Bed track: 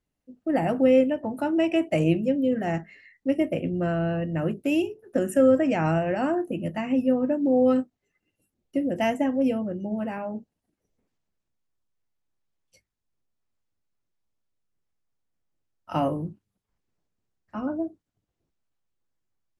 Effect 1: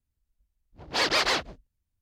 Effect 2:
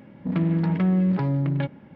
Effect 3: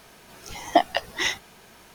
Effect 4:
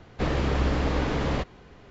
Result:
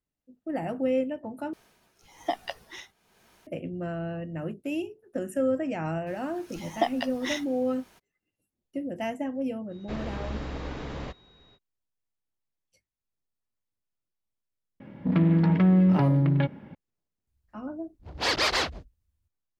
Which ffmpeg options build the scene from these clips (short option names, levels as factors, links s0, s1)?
-filter_complex "[3:a]asplit=2[s0][s1];[0:a]volume=0.422[s2];[s0]tremolo=f=1.1:d=0.76[s3];[4:a]aeval=exprs='val(0)+0.00355*sin(2*PI*3800*n/s)':c=same[s4];[2:a]acontrast=38[s5];[1:a]equalizer=f=68:w=1.5:g=10.5[s6];[s2]asplit=2[s7][s8];[s7]atrim=end=1.534[s9];[s3]atrim=end=1.94,asetpts=PTS-STARTPTS,volume=0.335[s10];[s8]atrim=start=3.466[s11];[s1]atrim=end=1.94,asetpts=PTS-STARTPTS,volume=0.422,afade=t=in:d=0.02,afade=t=out:st=1.92:d=0.02,adelay=6060[s12];[s4]atrim=end=1.9,asetpts=PTS-STARTPTS,volume=0.316,afade=t=in:d=0.05,afade=t=out:st=1.85:d=0.05,adelay=9690[s13];[s5]atrim=end=1.95,asetpts=PTS-STARTPTS,volume=0.631,afade=t=in:d=0.004:c=hsin,afade=t=out:st=1.946:d=0.004:c=hsin,adelay=14800[s14];[s6]atrim=end=2.01,asetpts=PTS-STARTPTS,volume=0.891,afade=t=in:d=0.004:c=hsin,afade=t=out:st=2.006:d=0.004:c=hsin,adelay=17270[s15];[s9][s10]acrossfade=d=0.004:c1=hsin:c2=hsin[s16];[s16][s11]acrossfade=d=0.004:c1=hsin:c2=hsin[s17];[s17][s12][s13][s14][s15]amix=inputs=5:normalize=0"